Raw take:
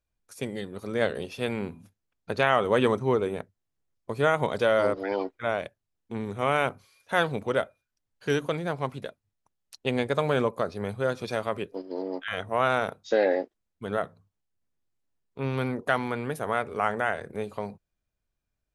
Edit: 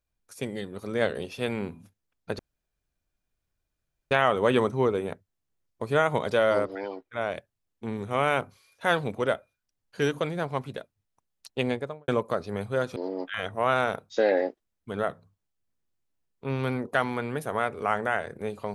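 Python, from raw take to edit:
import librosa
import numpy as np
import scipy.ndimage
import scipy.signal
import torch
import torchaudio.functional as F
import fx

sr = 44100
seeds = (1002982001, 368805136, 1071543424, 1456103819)

y = fx.studio_fade_out(x, sr, start_s=9.89, length_s=0.47)
y = fx.edit(y, sr, fx.insert_room_tone(at_s=2.39, length_s=1.72),
    fx.fade_down_up(start_s=4.82, length_s=0.82, db=-8.5, fade_s=0.39),
    fx.cut(start_s=11.24, length_s=0.66), tone=tone)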